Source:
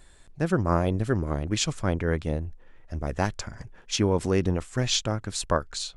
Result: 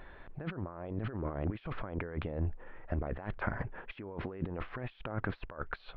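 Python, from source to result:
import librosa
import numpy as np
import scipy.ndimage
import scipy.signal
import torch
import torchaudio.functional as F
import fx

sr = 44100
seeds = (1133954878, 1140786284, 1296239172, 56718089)

y = fx.low_shelf(x, sr, hz=330.0, db=-10.5)
y = fx.over_compress(y, sr, threshold_db=-41.0, ratio=-1.0)
y = scipy.ndimage.gaussian_filter1d(y, 4.0, mode='constant')
y = y * librosa.db_to_amplitude(3.5)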